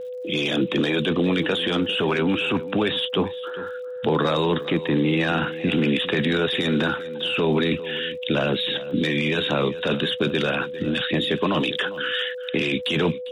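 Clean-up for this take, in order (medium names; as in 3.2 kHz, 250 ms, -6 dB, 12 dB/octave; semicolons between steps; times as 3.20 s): de-click; band-stop 500 Hz, Q 30; inverse comb 401 ms -16.5 dB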